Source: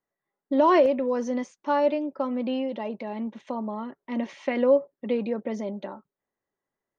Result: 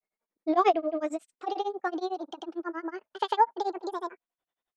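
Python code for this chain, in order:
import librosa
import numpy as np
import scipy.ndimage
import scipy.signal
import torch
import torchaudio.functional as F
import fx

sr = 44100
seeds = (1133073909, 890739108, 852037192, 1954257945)

y = fx.speed_glide(x, sr, from_pct=109, to_pct=184)
y = fx.granulator(y, sr, seeds[0], grain_ms=100.0, per_s=11.0, spray_ms=100.0, spread_st=0)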